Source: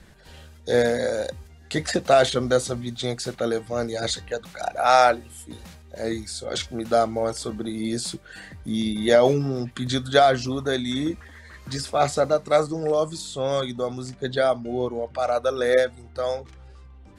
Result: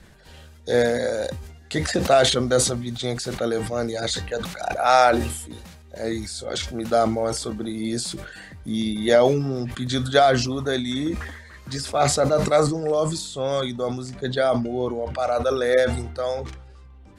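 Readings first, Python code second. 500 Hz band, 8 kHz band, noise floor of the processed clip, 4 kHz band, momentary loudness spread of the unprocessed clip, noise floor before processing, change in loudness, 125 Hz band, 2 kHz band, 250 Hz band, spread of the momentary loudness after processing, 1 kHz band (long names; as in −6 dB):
+0.5 dB, +5.0 dB, −46 dBFS, +2.0 dB, 14 LU, −48 dBFS, +1.0 dB, +3.5 dB, +1.0 dB, +2.0 dB, 14 LU, +0.5 dB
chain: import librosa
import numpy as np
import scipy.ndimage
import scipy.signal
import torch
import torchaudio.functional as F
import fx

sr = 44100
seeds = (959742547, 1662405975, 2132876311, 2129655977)

y = fx.sustainer(x, sr, db_per_s=60.0)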